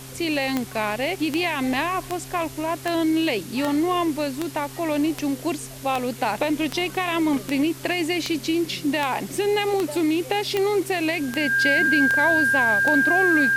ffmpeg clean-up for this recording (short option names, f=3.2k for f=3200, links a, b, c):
-af "adeclick=t=4,bandreject=f=132:t=h:w=4,bandreject=f=264:t=h:w=4,bandreject=f=396:t=h:w=4,bandreject=f=1.6k:w=30,afwtdn=0.0089"